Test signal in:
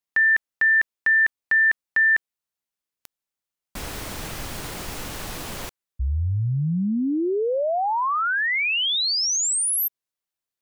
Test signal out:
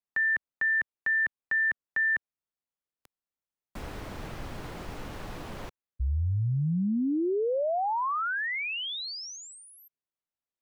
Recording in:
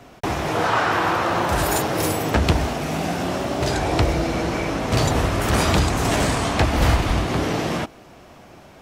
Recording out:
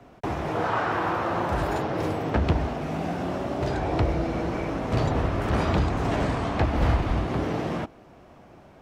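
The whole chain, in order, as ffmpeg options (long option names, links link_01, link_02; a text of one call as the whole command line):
ffmpeg -i in.wav -filter_complex "[0:a]highshelf=frequency=2400:gain=-11.5,acrossover=split=150|5800[link_01][link_02][link_03];[link_03]acompressor=threshold=-53dB:ratio=6:attack=36:release=911:detection=rms[link_04];[link_01][link_02][link_04]amix=inputs=3:normalize=0,volume=-4dB" out.wav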